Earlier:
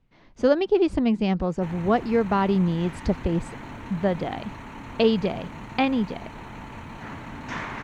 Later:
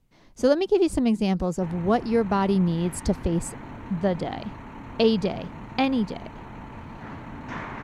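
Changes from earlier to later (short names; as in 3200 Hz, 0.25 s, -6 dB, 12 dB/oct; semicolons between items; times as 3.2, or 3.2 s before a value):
speech: remove LPF 2400 Hz 12 dB/oct; master: add high shelf 2200 Hz -9.5 dB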